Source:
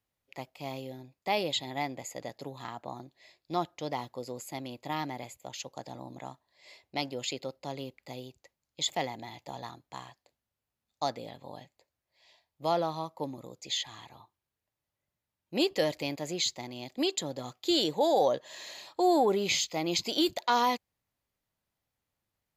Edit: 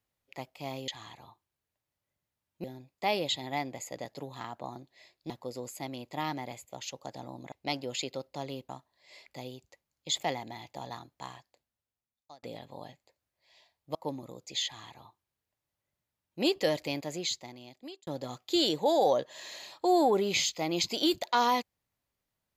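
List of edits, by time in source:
0:03.54–0:04.02: remove
0:06.24–0:06.81: move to 0:07.98
0:10.05–0:11.15: fade out
0:12.67–0:13.10: remove
0:13.80–0:15.56: duplicate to 0:00.88
0:16.13–0:17.22: fade out

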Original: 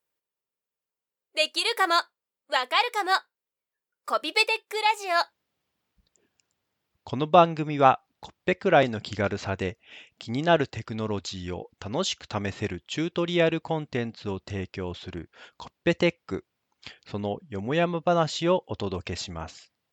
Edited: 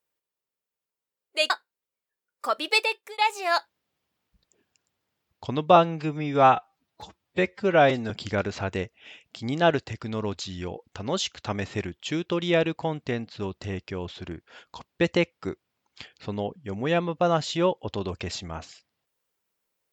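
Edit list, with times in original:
0:01.50–0:03.14: remove
0:04.50–0:04.82: fade out equal-power
0:07.40–0:08.96: time-stretch 1.5×

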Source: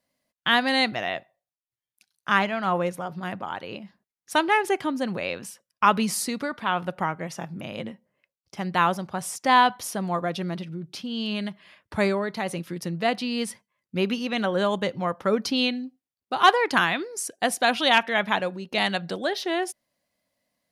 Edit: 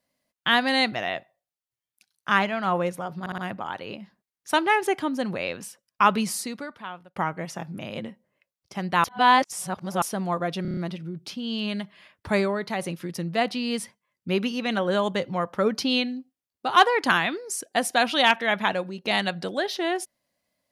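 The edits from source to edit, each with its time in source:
0:03.20: stutter 0.06 s, 4 plays
0:05.92–0:06.98: fade out
0:08.86–0:09.84: reverse
0:10.44: stutter 0.03 s, 6 plays

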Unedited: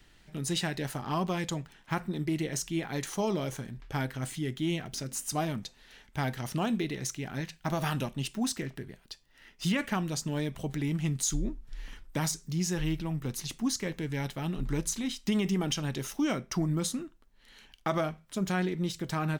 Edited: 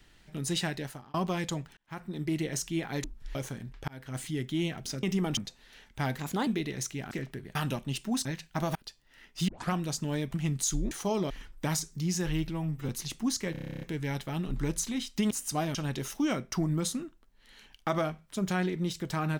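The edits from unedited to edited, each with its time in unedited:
0:00.69–0:01.14: fade out
0:01.77–0:02.32: fade in
0:03.04–0:03.43: swap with 0:11.51–0:11.82
0:03.96–0:04.30: fade in
0:05.11–0:05.55: swap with 0:15.40–0:15.74
0:06.36–0:06.71: play speed 120%
0:07.35–0:07.85: swap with 0:08.55–0:08.99
0:09.72: tape start 0.25 s
0:10.58–0:10.94: remove
0:13.03–0:13.28: time-stretch 1.5×
0:13.91: stutter 0.03 s, 11 plays

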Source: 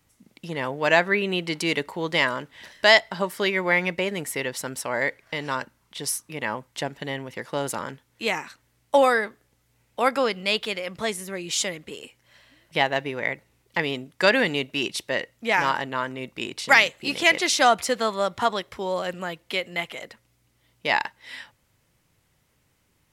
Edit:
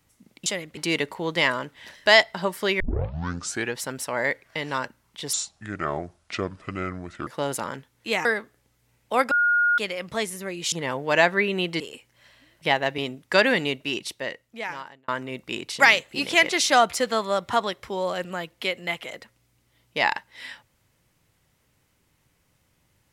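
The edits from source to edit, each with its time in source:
0:00.46–0:01.54: swap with 0:11.59–0:11.90
0:03.57: tape start 0.97 s
0:06.10–0:07.42: play speed 68%
0:08.40–0:09.12: remove
0:10.18–0:10.65: beep over 1,430 Hz −17 dBFS
0:13.08–0:13.87: remove
0:14.52–0:15.97: fade out

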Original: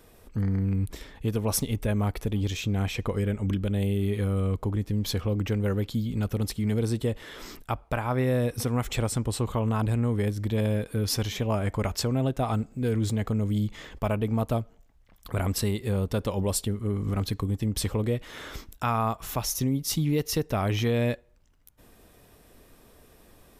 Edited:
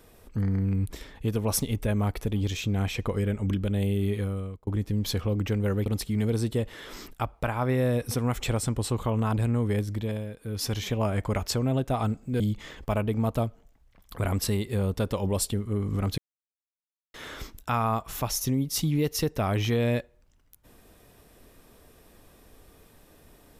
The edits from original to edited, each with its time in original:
0:04.10–0:04.67: fade out
0:05.86–0:06.35: remove
0:10.33–0:11.31: duck −10 dB, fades 0.42 s
0:12.89–0:13.54: remove
0:17.32–0:18.28: silence

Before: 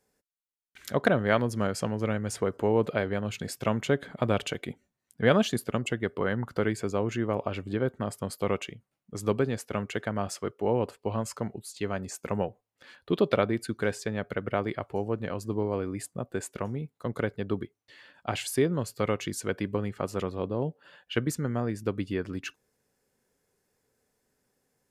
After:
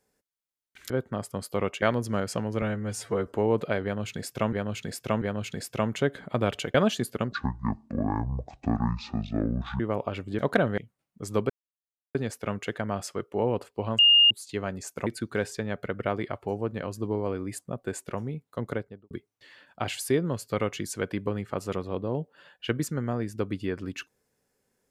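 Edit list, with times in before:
0:00.90–0:01.29: swap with 0:07.78–0:08.70
0:02.09–0:02.52: time-stretch 1.5×
0:03.09–0:03.78: repeat, 3 plays
0:04.62–0:05.28: remove
0:05.85–0:07.19: play speed 54%
0:09.42: splice in silence 0.65 s
0:11.26–0:11.58: beep over 2,830 Hz −14 dBFS
0:12.34–0:13.54: remove
0:17.10–0:17.58: fade out and dull

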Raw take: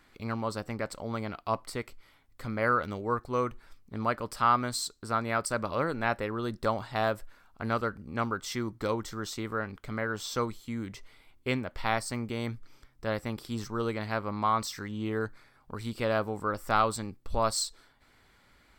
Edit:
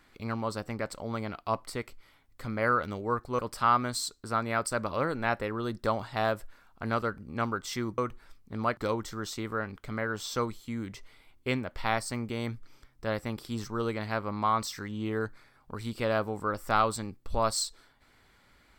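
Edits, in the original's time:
0:03.39–0:04.18: move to 0:08.77

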